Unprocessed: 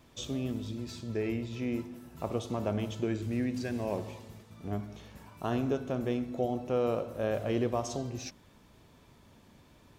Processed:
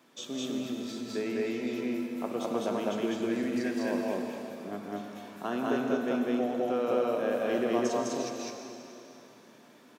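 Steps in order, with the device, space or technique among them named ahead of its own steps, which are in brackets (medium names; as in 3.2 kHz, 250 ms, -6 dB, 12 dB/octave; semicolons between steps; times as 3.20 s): stadium PA (high-pass 200 Hz 24 dB/octave; peaking EQ 1.5 kHz +4 dB 0.56 oct; loudspeakers at several distances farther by 57 m -12 dB, 70 m 0 dB, 81 m -10 dB; reverberation RT60 3.2 s, pre-delay 88 ms, DRR 5 dB); trim -1 dB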